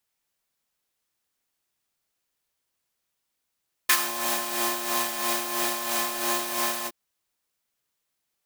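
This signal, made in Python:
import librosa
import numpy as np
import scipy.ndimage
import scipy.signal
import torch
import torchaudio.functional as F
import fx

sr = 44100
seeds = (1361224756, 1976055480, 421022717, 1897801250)

y = fx.sub_patch_tremolo(sr, seeds[0], note=58, wave='triangle', wave2='square', interval_st=7, detune_cents=8, level2_db=-6, sub_db=-7, noise_db=-2.0, kind='highpass', cutoff_hz=420.0, q=1.7, env_oct=2.0, env_decay_s=0.19, env_sustain_pct=35, attack_ms=8.0, decay_s=0.07, sustain_db=-11.0, release_s=0.05, note_s=2.97, lfo_hz=3.0, tremolo_db=7.0)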